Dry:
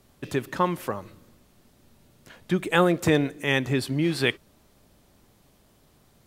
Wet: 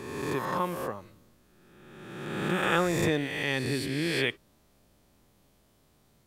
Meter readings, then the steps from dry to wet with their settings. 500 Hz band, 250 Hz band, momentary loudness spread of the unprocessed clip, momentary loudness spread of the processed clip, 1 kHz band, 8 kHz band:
−4.5 dB, −5.5 dB, 11 LU, 14 LU, −3.0 dB, −1.0 dB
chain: peak hold with a rise ahead of every peak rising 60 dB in 1.59 s
level −8 dB

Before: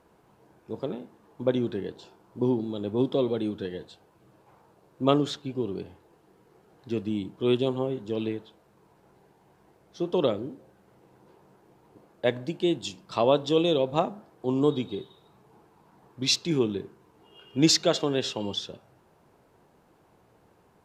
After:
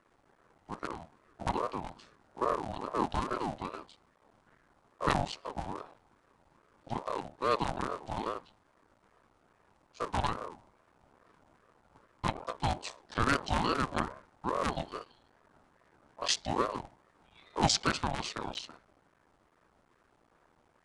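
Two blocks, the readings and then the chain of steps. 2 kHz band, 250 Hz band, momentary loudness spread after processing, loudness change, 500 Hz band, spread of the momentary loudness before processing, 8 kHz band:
+2.0 dB, −11.0 dB, 13 LU, −6.5 dB, −11.0 dB, 13 LU, −5.0 dB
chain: sub-harmonics by changed cycles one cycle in 3, muted
downsampling to 22,050 Hz
ring modulator whose carrier an LFO sweeps 630 Hz, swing 35%, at 2.4 Hz
level −2 dB

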